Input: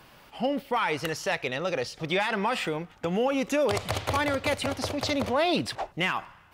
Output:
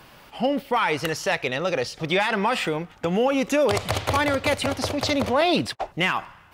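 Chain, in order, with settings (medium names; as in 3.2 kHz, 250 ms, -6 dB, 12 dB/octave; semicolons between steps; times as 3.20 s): 5.41–5.84 s: gate -32 dBFS, range -43 dB; trim +4.5 dB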